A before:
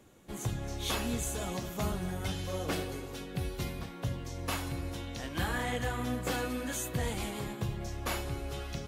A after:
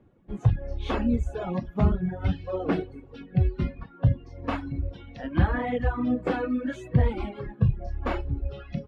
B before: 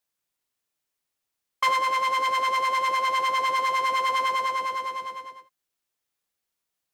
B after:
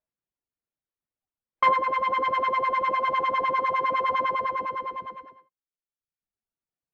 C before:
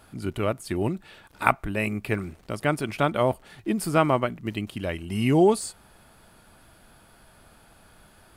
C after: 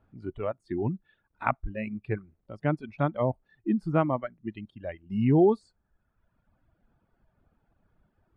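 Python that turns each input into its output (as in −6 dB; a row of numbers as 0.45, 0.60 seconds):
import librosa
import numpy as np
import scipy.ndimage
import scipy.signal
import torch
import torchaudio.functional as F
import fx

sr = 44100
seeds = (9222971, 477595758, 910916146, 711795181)

y = fx.dereverb_blind(x, sr, rt60_s=1.3)
y = scipy.signal.sosfilt(scipy.signal.butter(2, 2000.0, 'lowpass', fs=sr, output='sos'), y)
y = fx.noise_reduce_blind(y, sr, reduce_db=11)
y = fx.low_shelf(y, sr, hz=450.0, db=10.5)
y = librosa.util.normalize(y) * 10.0 ** (-9 / 20.0)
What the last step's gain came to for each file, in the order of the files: +4.5, +2.5, −7.5 decibels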